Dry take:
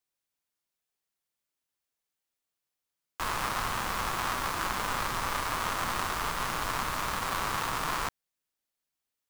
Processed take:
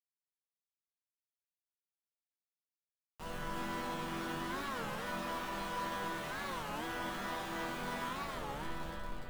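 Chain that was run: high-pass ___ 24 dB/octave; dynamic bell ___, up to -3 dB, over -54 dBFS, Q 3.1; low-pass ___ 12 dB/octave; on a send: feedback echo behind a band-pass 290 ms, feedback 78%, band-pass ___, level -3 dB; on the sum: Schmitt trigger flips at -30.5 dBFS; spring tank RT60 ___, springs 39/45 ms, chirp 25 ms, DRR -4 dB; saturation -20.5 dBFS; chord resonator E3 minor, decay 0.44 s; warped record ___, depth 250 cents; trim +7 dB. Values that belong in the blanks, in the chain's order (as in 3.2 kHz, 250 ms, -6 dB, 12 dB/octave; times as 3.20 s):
230 Hz, 2.8 kHz, 7.1 kHz, 1.1 kHz, 1.8 s, 33 1/3 rpm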